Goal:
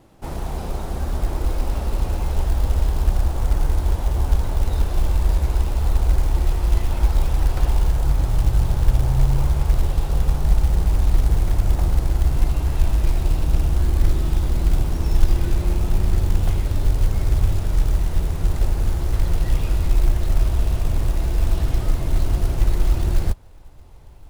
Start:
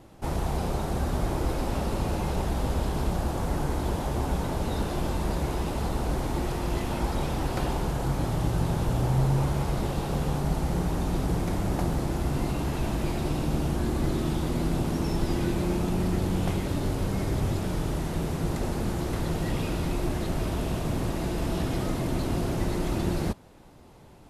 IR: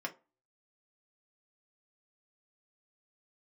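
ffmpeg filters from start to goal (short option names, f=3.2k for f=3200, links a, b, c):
-af "asubboost=boost=9.5:cutoff=64,acrusher=bits=7:mode=log:mix=0:aa=0.000001,volume=-1dB"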